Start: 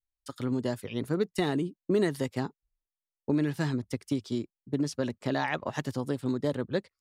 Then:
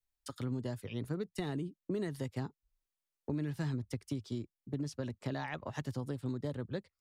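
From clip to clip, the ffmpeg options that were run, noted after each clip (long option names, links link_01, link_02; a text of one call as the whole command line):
ffmpeg -i in.wav -filter_complex "[0:a]acrossover=split=120[link_01][link_02];[link_02]acompressor=threshold=-49dB:ratio=2[link_03];[link_01][link_03]amix=inputs=2:normalize=0,volume=2dB" out.wav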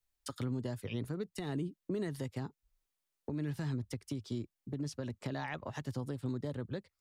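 ffmpeg -i in.wav -af "alimiter=level_in=7.5dB:limit=-24dB:level=0:latency=1:release=242,volume=-7.5dB,volume=3.5dB" out.wav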